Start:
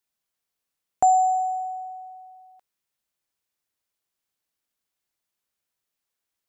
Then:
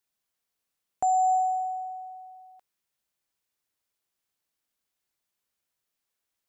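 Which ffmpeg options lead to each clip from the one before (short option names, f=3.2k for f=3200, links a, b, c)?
-af "alimiter=limit=-18.5dB:level=0:latency=1"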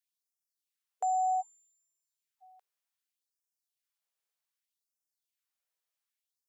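-af "afftfilt=real='re*gte(b*sr/1024,370*pow(5100/370,0.5+0.5*sin(2*PI*0.65*pts/sr)))':imag='im*gte(b*sr/1024,370*pow(5100/370,0.5+0.5*sin(2*PI*0.65*pts/sr)))':win_size=1024:overlap=0.75,volume=-6dB"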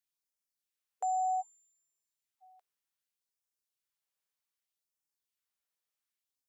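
-af "bandreject=f=680:w=12,volume=-1.5dB"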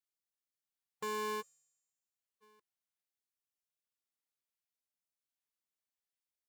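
-af "aeval=exprs='val(0)*sgn(sin(2*PI*320*n/s))':c=same,volume=-6.5dB"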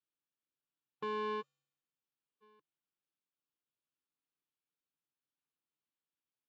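-af "highpass=130,equalizer=f=140:t=q:w=4:g=9,equalizer=f=300:t=q:w=4:g=7,equalizer=f=670:t=q:w=4:g=-8,equalizer=f=2k:t=q:w=4:g=-9,lowpass=f=3.5k:w=0.5412,lowpass=f=3.5k:w=1.3066,volume=1dB"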